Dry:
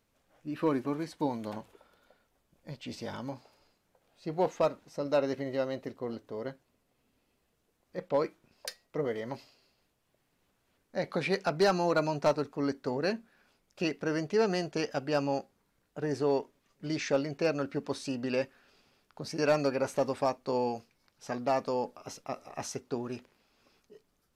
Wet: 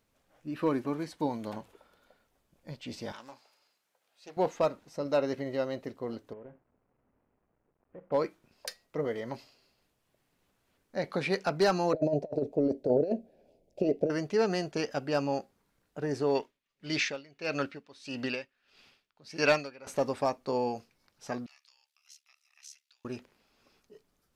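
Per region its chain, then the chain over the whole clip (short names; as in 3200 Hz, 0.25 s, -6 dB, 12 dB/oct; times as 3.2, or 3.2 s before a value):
3.12–4.37 HPF 1400 Hz 6 dB/oct + Doppler distortion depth 0.28 ms
6.33–8.12 CVSD 16 kbps + LPF 1100 Hz + compressor 10:1, threshold -43 dBFS
11.93–14.1 EQ curve 220 Hz 0 dB, 640 Hz +10 dB, 1200 Hz -29 dB, 2400 Hz -14 dB + negative-ratio compressor -27 dBFS, ratio -0.5
16.35–19.87 bell 2900 Hz +11 dB 2.1 oct + dB-linear tremolo 1.6 Hz, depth 22 dB
21.46–23.05 ring modulator 36 Hz + compressor 2:1, threshold -38 dBFS + ladder high-pass 2100 Hz, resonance 25%
whole clip: dry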